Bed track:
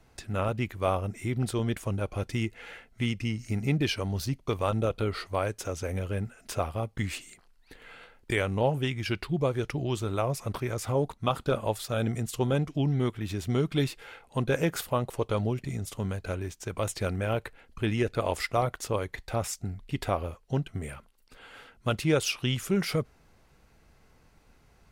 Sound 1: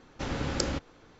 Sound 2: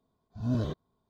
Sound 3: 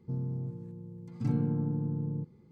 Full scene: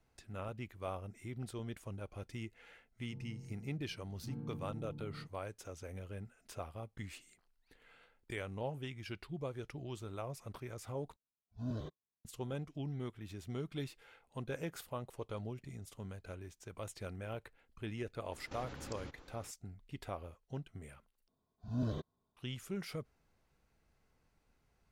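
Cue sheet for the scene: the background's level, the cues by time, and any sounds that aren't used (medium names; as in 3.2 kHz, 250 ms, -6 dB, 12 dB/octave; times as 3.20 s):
bed track -14.5 dB
3.03 s: add 3 -15.5 dB
11.16 s: replace with 2 -11 dB + spectral noise reduction 20 dB
18.32 s: add 1 -4 dB + compression 10:1, threshold -40 dBFS
21.28 s: replace with 2 -7 dB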